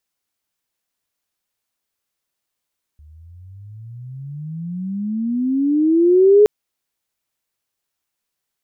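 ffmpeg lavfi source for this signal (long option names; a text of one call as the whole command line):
ffmpeg -f lavfi -i "aevalsrc='pow(10,(-6+35.5*(t/3.47-1))/20)*sin(2*PI*73.1*3.47/(30.5*log(2)/12)*(exp(30.5*log(2)/12*t/3.47)-1))':duration=3.47:sample_rate=44100" out.wav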